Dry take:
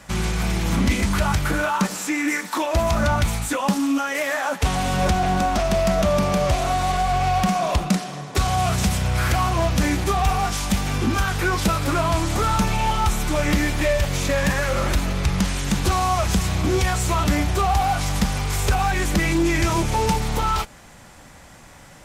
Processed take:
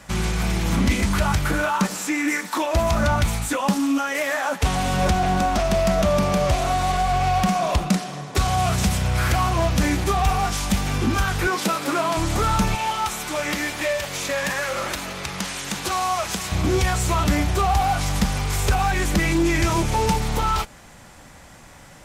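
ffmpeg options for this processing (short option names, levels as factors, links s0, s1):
-filter_complex "[0:a]asettb=1/sr,asplit=3[s0][s1][s2];[s0]atrim=end=11.474[s3];[s1]atrim=start=11.47:end=12.17,asetpts=PTS-STARTPTS,afade=t=in:d=0.004:c=qsin,afade=t=out:st=0.696:d=0.004:c=qsin,highpass=f=200:w=0.5412,highpass=f=200:w=1.3066[s4];[s2]atrim=start=12.166[s5];[s3][s4]acrossfade=d=0.004:c1=hsin:c2=qsin[s6];[s6][s5]acrossfade=d=0.004:c1=qsin:c2=hsin,asettb=1/sr,asplit=3[s7][s8][s9];[s7]atrim=end=12.754[s10];[s8]atrim=start=12.75:end=16.52,asetpts=PTS-STARTPTS,afade=t=in:d=0.004:c=qsin,afade=t=out:st=3.766:d=0.004:c=qsin,highpass=f=560:p=1[s11];[s9]atrim=start=16.516[s12];[s10][s11]acrossfade=d=0.004:c1=hsin:c2=qsin[s13];[s13][s12]acrossfade=d=0.004:c1=qsin:c2=hsin"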